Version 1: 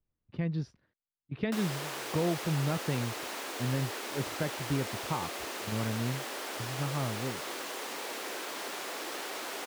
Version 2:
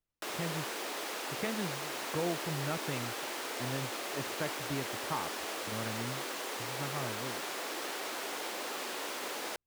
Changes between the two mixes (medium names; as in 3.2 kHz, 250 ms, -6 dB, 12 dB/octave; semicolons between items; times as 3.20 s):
speech: add bass shelf 350 Hz -9.5 dB; background: entry -1.30 s